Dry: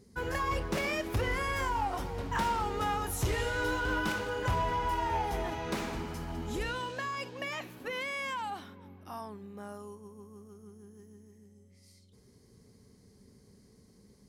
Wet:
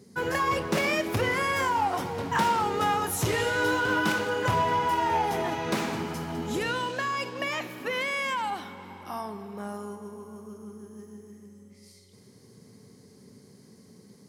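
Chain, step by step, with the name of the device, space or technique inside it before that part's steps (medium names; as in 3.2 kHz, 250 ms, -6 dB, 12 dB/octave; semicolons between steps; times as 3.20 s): compressed reverb return (on a send at -4.5 dB: reverberation RT60 2.8 s, pre-delay 50 ms + compression, threshold -44 dBFS, peak gain reduction 16 dB); on the sum: high-pass 110 Hz 24 dB/octave; trim +6.5 dB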